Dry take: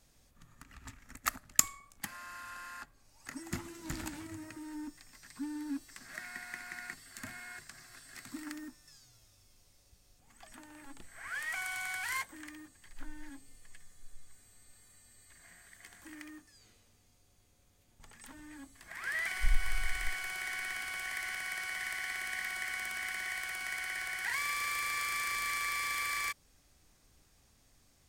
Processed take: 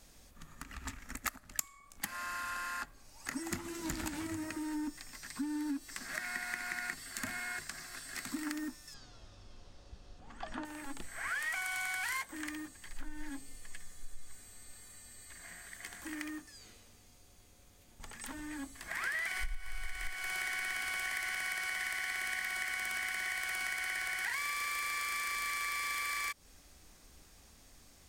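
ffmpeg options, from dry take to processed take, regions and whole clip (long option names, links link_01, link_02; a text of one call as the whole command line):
ffmpeg -i in.wav -filter_complex "[0:a]asettb=1/sr,asplit=3[link_01][link_02][link_03];[link_01]atrim=end=8.944[link_04];[link_02]atrim=start=8.94:end=10.65,asetpts=PTS-STARTPTS,afade=type=in:duration=0.004:curve=qsin,afade=type=out:start_time=1.706:duration=0.004:curve=qsin,lowpass=3000,equalizer=frequency=2200:width_type=o:width=0.49:gain=-8.5,acontrast=54[link_05];[link_03]atrim=start=10.646[link_06];[link_04][link_05]acrossfade=duration=0.004:curve1=hsin:curve2=qsin[link_07];[link_07][link_06]acrossfade=duration=0.004:curve1=qsin:curve2=hsin,acompressor=threshold=-41dB:ratio=10,equalizer=frequency=120:width_type=o:width=0.27:gain=-14,volume=7.5dB" out.wav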